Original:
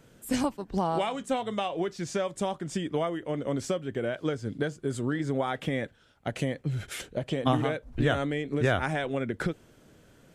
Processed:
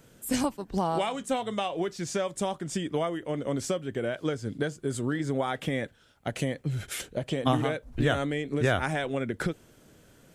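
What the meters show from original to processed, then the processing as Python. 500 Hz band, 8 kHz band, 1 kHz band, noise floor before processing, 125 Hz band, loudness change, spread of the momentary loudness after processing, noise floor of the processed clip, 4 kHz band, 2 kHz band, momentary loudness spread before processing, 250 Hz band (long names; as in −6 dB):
0.0 dB, +4.0 dB, 0.0 dB, −59 dBFS, 0.0 dB, 0.0 dB, 7 LU, −58 dBFS, +1.5 dB, +0.5 dB, 7 LU, 0.0 dB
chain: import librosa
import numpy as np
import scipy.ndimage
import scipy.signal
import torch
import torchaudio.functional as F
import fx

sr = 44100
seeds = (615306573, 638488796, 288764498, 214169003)

y = fx.high_shelf(x, sr, hz=6300.0, db=7.0)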